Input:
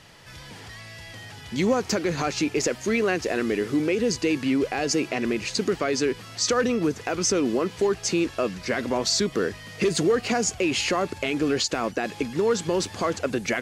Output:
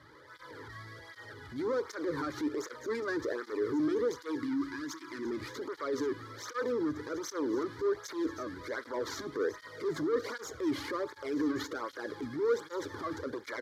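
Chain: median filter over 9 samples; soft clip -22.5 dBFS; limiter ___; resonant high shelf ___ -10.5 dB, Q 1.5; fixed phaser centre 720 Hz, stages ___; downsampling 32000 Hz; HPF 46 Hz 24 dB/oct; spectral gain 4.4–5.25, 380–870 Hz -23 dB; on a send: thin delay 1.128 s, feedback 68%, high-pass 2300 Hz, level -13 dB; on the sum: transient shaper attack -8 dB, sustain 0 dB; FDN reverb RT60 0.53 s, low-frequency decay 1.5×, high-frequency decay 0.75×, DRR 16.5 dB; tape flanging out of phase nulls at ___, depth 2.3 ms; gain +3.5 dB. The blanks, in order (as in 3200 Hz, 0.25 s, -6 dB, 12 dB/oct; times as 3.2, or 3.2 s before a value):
-26 dBFS, 6100 Hz, 6, 1.3 Hz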